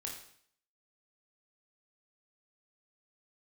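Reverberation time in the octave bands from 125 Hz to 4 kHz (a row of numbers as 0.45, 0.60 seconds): 0.65, 0.60, 0.60, 0.60, 0.60, 0.60 seconds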